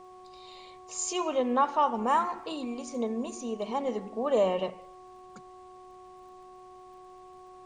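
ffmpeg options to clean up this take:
-af "adeclick=t=4,bandreject=f=368.5:t=h:w=4,bandreject=f=737:t=h:w=4,bandreject=f=1105.5:t=h:w=4,agate=range=0.0891:threshold=0.00794"

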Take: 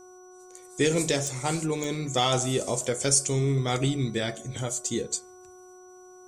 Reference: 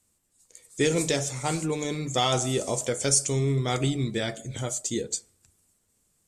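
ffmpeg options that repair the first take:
-af "adeclick=t=4,bandreject=f=365.7:t=h:w=4,bandreject=f=731.4:t=h:w=4,bandreject=f=1097.1:t=h:w=4,bandreject=f=1462.8:t=h:w=4,bandreject=f=5900:w=30"

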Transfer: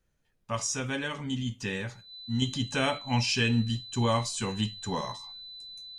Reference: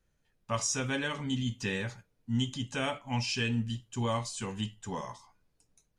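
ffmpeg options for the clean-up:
-af "bandreject=f=4000:w=30,asetnsamples=n=441:p=0,asendcmd='2.42 volume volume -5dB',volume=1"

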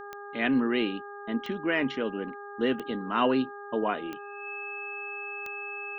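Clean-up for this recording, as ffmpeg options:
-af "adeclick=t=4,bandreject=f=406.6:t=h:w=4,bandreject=f=813.2:t=h:w=4,bandreject=f=1219.8:t=h:w=4,bandreject=f=1626.4:t=h:w=4,bandreject=f=2600:w=30"

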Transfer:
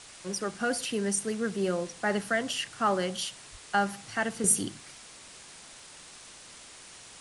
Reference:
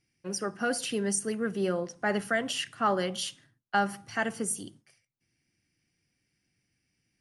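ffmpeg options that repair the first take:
-filter_complex "[0:a]adeclick=t=4,asplit=3[s0][s1][s2];[s0]afade=t=out:st=3.51:d=0.02[s3];[s1]highpass=f=140:w=0.5412,highpass=f=140:w=1.3066,afade=t=in:st=3.51:d=0.02,afade=t=out:st=3.63:d=0.02[s4];[s2]afade=t=in:st=3.63:d=0.02[s5];[s3][s4][s5]amix=inputs=3:normalize=0,afwtdn=0.005,asetnsamples=n=441:p=0,asendcmd='4.44 volume volume -8.5dB',volume=1"

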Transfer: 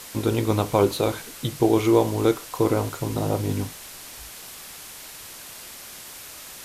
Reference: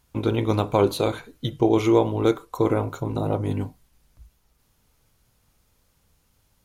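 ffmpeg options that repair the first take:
-af "afwtdn=0.011"

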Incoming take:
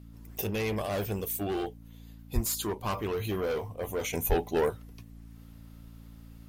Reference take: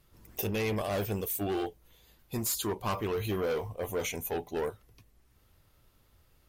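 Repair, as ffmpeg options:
-filter_complex "[0:a]bandreject=f=56.5:t=h:w=4,bandreject=f=113:t=h:w=4,bandreject=f=169.5:t=h:w=4,bandreject=f=226:t=h:w=4,bandreject=f=282.5:t=h:w=4,asplit=3[s0][s1][s2];[s0]afade=t=out:st=2.34:d=0.02[s3];[s1]highpass=f=140:w=0.5412,highpass=f=140:w=1.3066,afade=t=in:st=2.34:d=0.02,afade=t=out:st=2.46:d=0.02[s4];[s2]afade=t=in:st=2.46:d=0.02[s5];[s3][s4][s5]amix=inputs=3:normalize=0,asplit=3[s6][s7][s8];[s6]afade=t=out:st=4.28:d=0.02[s9];[s7]highpass=f=140:w=0.5412,highpass=f=140:w=1.3066,afade=t=in:st=4.28:d=0.02,afade=t=out:st=4.4:d=0.02[s10];[s8]afade=t=in:st=4.4:d=0.02[s11];[s9][s10][s11]amix=inputs=3:normalize=0,asetnsamples=n=441:p=0,asendcmd='4.13 volume volume -6dB',volume=1"

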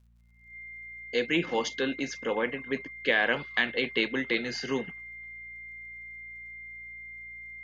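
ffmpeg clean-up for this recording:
-af "adeclick=t=4,bandreject=f=57.8:t=h:w=4,bandreject=f=115.6:t=h:w=4,bandreject=f=173.4:t=h:w=4,bandreject=f=231.2:t=h:w=4,bandreject=f=2100:w=30"

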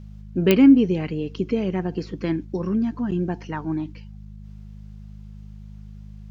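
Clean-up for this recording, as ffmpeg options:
-af "adeclick=t=4,bandreject=f=51.6:t=h:w=4,bandreject=f=103.2:t=h:w=4,bandreject=f=154.8:t=h:w=4,bandreject=f=206.4:t=h:w=4"

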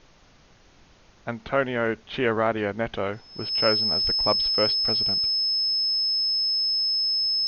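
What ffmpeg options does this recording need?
-af "bandreject=f=5200:w=30,agate=range=0.0891:threshold=0.00447"

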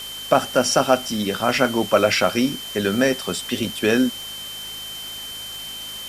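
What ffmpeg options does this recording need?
-af "adeclick=t=4,bandreject=f=52.7:t=h:w=4,bandreject=f=105.4:t=h:w=4,bandreject=f=158.1:t=h:w=4,bandreject=f=210.8:t=h:w=4,bandreject=f=263.5:t=h:w=4,bandreject=f=3100:w=30,afwtdn=0.014"

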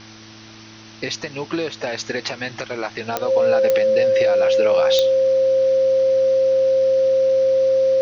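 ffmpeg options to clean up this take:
-af "adeclick=t=4,bandreject=f=109.5:t=h:w=4,bandreject=f=219:t=h:w=4,bandreject=f=328.5:t=h:w=4,bandreject=f=530:w=30,afftdn=nr=24:nf=-41"

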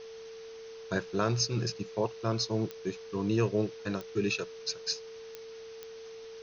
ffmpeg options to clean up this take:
-af "adeclick=t=4,bandreject=f=450:w=30,afftdn=nr=30:nf=-46"

